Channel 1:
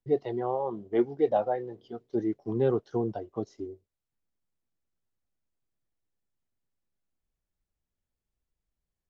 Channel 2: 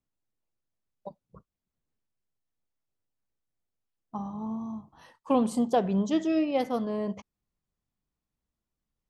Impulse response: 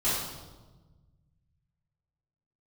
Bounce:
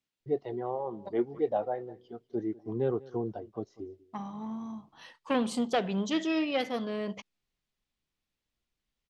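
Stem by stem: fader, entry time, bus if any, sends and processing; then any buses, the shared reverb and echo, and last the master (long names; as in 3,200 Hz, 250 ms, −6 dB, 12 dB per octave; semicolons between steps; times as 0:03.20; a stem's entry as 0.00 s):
−4.0 dB, 0.20 s, no send, echo send −21 dB, no processing
−1.0 dB, 0.00 s, no send, no echo send, one-sided soft clipper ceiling −20 dBFS; meter weighting curve D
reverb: not used
echo: single-tap delay 195 ms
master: high-shelf EQ 4,900 Hz −6.5 dB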